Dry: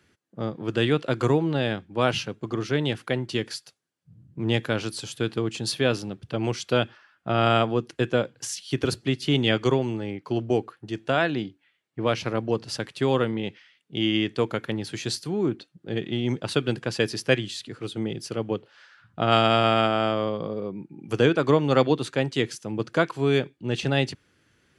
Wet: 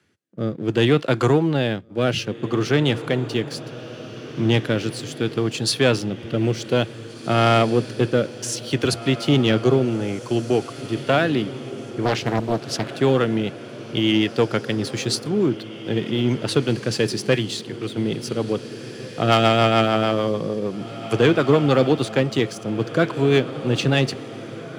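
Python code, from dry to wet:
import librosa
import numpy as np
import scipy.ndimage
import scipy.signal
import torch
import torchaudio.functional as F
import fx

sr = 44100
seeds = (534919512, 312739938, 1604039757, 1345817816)

p1 = fx.rotary_switch(x, sr, hz=0.65, then_hz=6.7, switch_at_s=10.7)
p2 = 10.0 ** (-17.5 / 20.0) * np.tanh(p1 / 10.0 ** (-17.5 / 20.0))
p3 = p1 + (p2 * librosa.db_to_amplitude(-5.5))
p4 = fx.leveller(p3, sr, passes=1)
p5 = scipy.signal.sosfilt(scipy.signal.butter(4, 78.0, 'highpass', fs=sr, output='sos'), p4)
p6 = p5 + fx.echo_diffused(p5, sr, ms=1928, feedback_pct=46, wet_db=-13.5, dry=0)
y = fx.doppler_dist(p6, sr, depth_ms=0.86, at=(12.05, 12.92))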